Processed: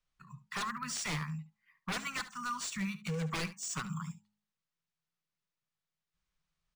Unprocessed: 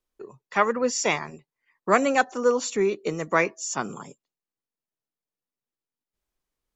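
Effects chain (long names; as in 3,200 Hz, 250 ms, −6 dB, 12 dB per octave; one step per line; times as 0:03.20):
elliptic band-stop filter 190–1,100 Hz, stop band 40 dB
parametric band 160 Hz +12.5 dB 0.29 octaves
hum removal 104.3 Hz, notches 9
in parallel at +0.5 dB: downward compressor 6 to 1, threshold −38 dBFS, peak gain reduction 19 dB
on the sum: wave folding −23.5 dBFS
on a send: single-tap delay 71 ms −15 dB
on the sum: linearly interpolated sample-rate reduction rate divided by 3×
level −6 dB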